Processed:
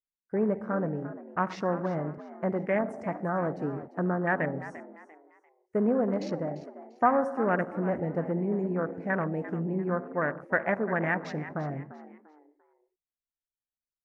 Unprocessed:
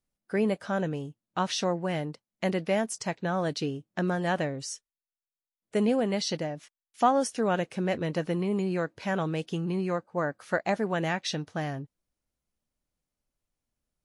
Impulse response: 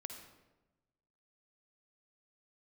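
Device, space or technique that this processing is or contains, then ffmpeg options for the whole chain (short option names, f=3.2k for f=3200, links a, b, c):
keyed gated reverb: -filter_complex "[0:a]bandreject=f=790:w=22,asplit=3[a][b][c];[1:a]atrim=start_sample=2205[d];[b][d]afir=irnorm=-1:irlink=0[e];[c]apad=whole_len=619417[f];[e][f]sidechaingate=range=-33dB:threshold=-46dB:ratio=16:detection=peak,volume=3.5dB[g];[a][g]amix=inputs=2:normalize=0,afwtdn=0.0398,highshelf=f=2.6k:t=q:w=3:g=-10,asplit=4[h][i][j][k];[i]adelay=345,afreqshift=76,volume=-14.5dB[l];[j]adelay=690,afreqshift=152,volume=-25dB[m];[k]adelay=1035,afreqshift=228,volume=-35.4dB[n];[h][l][m][n]amix=inputs=4:normalize=0,volume=-6.5dB"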